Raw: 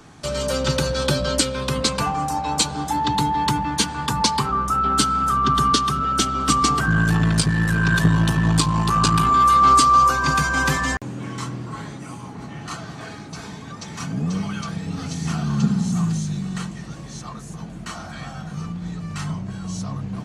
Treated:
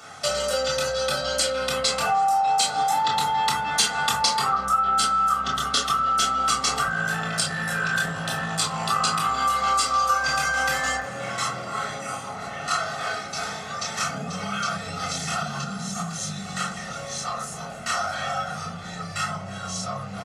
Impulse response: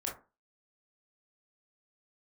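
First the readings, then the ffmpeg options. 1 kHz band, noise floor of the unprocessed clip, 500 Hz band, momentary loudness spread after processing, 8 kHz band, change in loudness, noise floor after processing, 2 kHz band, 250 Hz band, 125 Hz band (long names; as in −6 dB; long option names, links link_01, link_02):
−3.0 dB, −36 dBFS, −1.0 dB, 10 LU, −0.5 dB, −4.5 dB, −35 dBFS, −0.5 dB, −12.5 dB, −13.5 dB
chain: -filter_complex "[0:a]aecho=1:1:1.5:0.72,asplit=2[link_01][link_02];[link_02]adelay=320,highpass=300,lowpass=3400,asoftclip=type=hard:threshold=-10dB,volume=-21dB[link_03];[link_01][link_03]amix=inputs=2:normalize=0[link_04];[1:a]atrim=start_sample=2205[link_05];[link_04][link_05]afir=irnorm=-1:irlink=0,acompressor=threshold=-23dB:ratio=6,highpass=frequency=870:poles=1,volume=7dB"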